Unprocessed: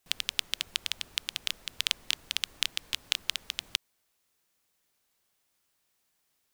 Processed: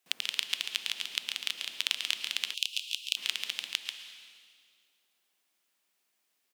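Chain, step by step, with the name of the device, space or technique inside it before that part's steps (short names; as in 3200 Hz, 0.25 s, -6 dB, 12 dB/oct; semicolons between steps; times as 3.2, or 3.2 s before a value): PA in a hall (HPF 190 Hz 24 dB/oct; bell 2600 Hz +4 dB 1.1 oct; echo 0.139 s -6 dB; reverb RT60 2.0 s, pre-delay 0.103 s, DRR 8.5 dB); 2.54–3.17 elliptic high-pass 2600 Hz, stop band 40 dB; gain -4 dB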